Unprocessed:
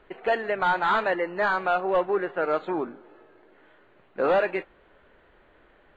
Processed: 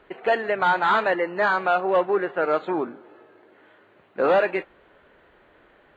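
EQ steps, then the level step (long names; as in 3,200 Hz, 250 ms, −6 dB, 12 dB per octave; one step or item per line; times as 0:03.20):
high-pass filter 81 Hz 6 dB per octave
+3.0 dB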